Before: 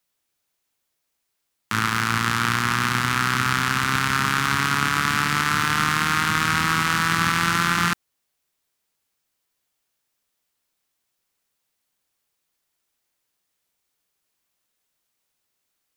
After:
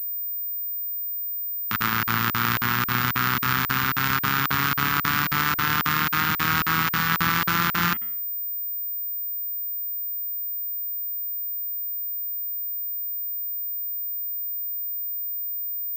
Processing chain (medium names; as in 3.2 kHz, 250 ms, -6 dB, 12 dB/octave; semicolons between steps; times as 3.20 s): de-hum 109.3 Hz, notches 30; crackling interface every 0.27 s, samples 2048, zero, from 0.41 s; class-D stage that switches slowly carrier 15 kHz; trim -1.5 dB